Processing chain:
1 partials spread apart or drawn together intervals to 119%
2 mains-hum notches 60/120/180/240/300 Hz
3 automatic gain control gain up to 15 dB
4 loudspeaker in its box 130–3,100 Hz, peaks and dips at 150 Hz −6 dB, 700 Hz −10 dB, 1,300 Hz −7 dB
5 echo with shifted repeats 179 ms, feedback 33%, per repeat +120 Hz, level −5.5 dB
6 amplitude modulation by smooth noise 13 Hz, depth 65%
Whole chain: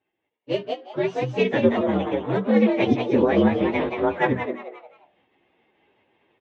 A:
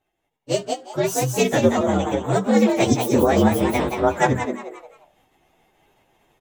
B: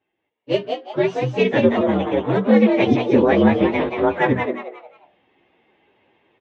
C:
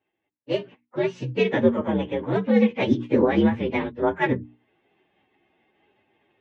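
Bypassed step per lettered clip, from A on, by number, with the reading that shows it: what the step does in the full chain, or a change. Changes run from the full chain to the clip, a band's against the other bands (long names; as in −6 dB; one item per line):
4, 250 Hz band −3.5 dB
6, change in integrated loudness +4.0 LU
5, 1 kHz band −2.0 dB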